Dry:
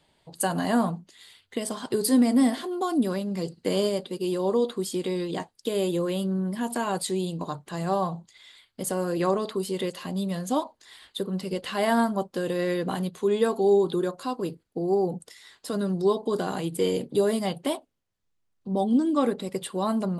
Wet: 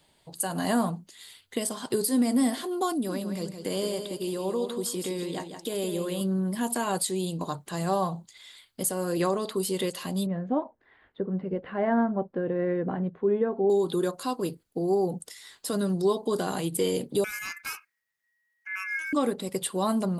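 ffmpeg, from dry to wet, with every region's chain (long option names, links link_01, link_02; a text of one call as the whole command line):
ffmpeg -i in.wav -filter_complex "[0:a]asettb=1/sr,asplit=3[link_01][link_02][link_03];[link_01]atrim=end=2.924[link_04];[link_02]atrim=start=2.92:end=6.21,asetpts=PTS-STARTPTS,afade=type=in:duration=0.004:curve=qsin,afade=type=out:start_time=3.286:duration=0.004:curve=qsin,acompressor=threshold=-35dB:ratio=1.5:attack=3.2:release=140:knee=1:detection=peak,aecho=1:1:165|330|495:0.398|0.115|0.0335,atrim=end_sample=145089[link_05];[link_03]atrim=start=6.206[link_06];[link_04][link_05]acrossfade=duration=0.004:curve1=hsin:curve2=qsin[link_07];[link_07][link_06]acrossfade=duration=0.004:curve1=qsin:curve2=hsin,asettb=1/sr,asplit=3[link_08][link_09][link_10];[link_08]atrim=end=10.264[link_11];[link_09]atrim=start=10.26:end=13.7,asetpts=PTS-STARTPTS,afade=type=in:duration=0.004:curve=qsin,afade=type=out:start_time=3.436:duration=0.004:curve=qsin,lowpass=frequency=1700:width=0.5412,lowpass=frequency=1700:width=1.3066,equalizer=frequency=1100:width_type=o:width=0.85:gain=-7[link_12];[link_10]atrim=start=13.696[link_13];[link_11][link_12]acrossfade=duration=0.004:curve1=hsin:curve2=qsin[link_14];[link_14][link_13]acrossfade=duration=0.004:curve1=qsin:curve2=hsin,asettb=1/sr,asplit=3[link_15][link_16][link_17];[link_15]atrim=end=17.244[link_18];[link_16]atrim=start=17.24:end=19.13,asetpts=PTS-STARTPTS,afade=type=in:duration=0.004:curve=qsin,afade=type=out:start_time=1.886:duration=0.004:curve=qsin,equalizer=frequency=8900:width=4.5:gain=-6.5,acrossover=split=140|3000[link_19][link_20][link_21];[link_20]acompressor=threshold=-38dB:ratio=2:attack=3.2:release=140:knee=2.83:detection=peak[link_22];[link_19][link_22][link_21]amix=inputs=3:normalize=0,aeval=exprs='val(0)*sin(2*PI*1900*n/s)':channel_layout=same[link_23];[link_17]atrim=start=19.126[link_24];[link_18][link_23]acrossfade=duration=0.004:curve1=hsin:curve2=qsin[link_25];[link_25][link_24]acrossfade=duration=0.004:curve1=qsin:curve2=hsin,highshelf=frequency=7100:gain=10.5,alimiter=limit=-15.5dB:level=0:latency=1:release=306" out.wav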